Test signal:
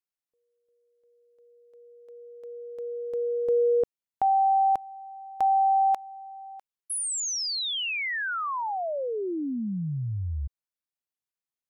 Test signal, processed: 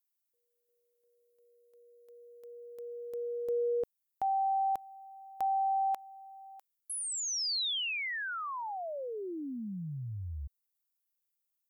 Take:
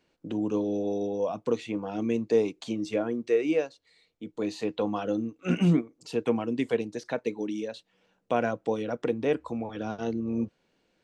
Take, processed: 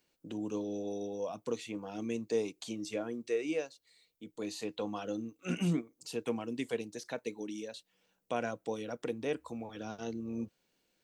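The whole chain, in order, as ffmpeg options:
-filter_complex "[0:a]aemphasis=mode=production:type=75fm,acrossover=split=4700[a][b];[b]acompressor=threshold=-32dB:ratio=4:attack=1:release=60[c];[a][c]amix=inputs=2:normalize=0,volume=-8dB"

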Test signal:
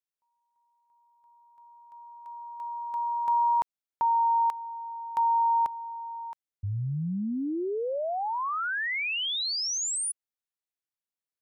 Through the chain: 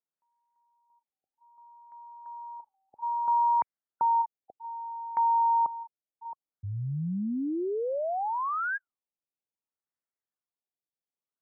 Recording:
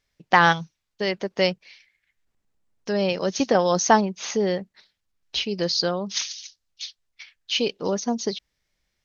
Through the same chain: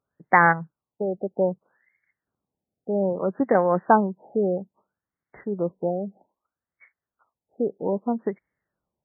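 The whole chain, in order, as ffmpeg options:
-af "highpass=110,afftfilt=real='re*lt(b*sr/1024,800*pow(2300/800,0.5+0.5*sin(2*PI*0.62*pts/sr)))':imag='im*lt(b*sr/1024,800*pow(2300/800,0.5+0.5*sin(2*PI*0.62*pts/sr)))':win_size=1024:overlap=0.75"

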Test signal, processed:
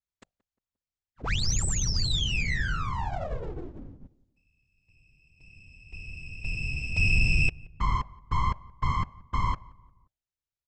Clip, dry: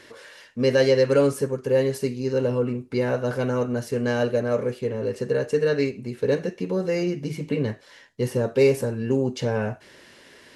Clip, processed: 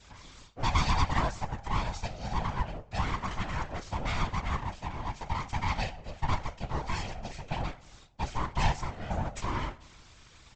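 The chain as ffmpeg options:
-filter_complex "[0:a]highpass=310,bandreject=f=50:t=h:w=6,bandreject=f=100:t=h:w=6,bandreject=f=150:t=h:w=6,bandreject=f=200:t=h:w=6,bandreject=f=250:t=h:w=6,bandreject=f=300:t=h:w=6,bandreject=f=350:t=h:w=6,bandreject=f=400:t=h:w=6,adynamicequalizer=threshold=0.0178:dfrequency=580:dqfactor=1.2:tfrequency=580:tqfactor=1.2:attack=5:release=100:ratio=0.375:range=2:mode=cutabove:tftype=bell,aresample=16000,aeval=exprs='abs(val(0))':c=same,aresample=44100,afftfilt=real='hypot(re,im)*cos(2*PI*random(0))':imag='hypot(re,im)*sin(2*PI*random(1))':win_size=512:overlap=0.75,asoftclip=type=tanh:threshold=-15dB,asplit=2[a][b];[b]adelay=176,lowpass=f=1.4k:p=1,volume=-22dB,asplit=2[c][d];[d]adelay=176,lowpass=f=1.4k:p=1,volume=0.47,asplit=2[e][f];[f]adelay=176,lowpass=f=1.4k:p=1,volume=0.47[g];[c][e][g]amix=inputs=3:normalize=0[h];[a][h]amix=inputs=2:normalize=0,volume=3.5dB"

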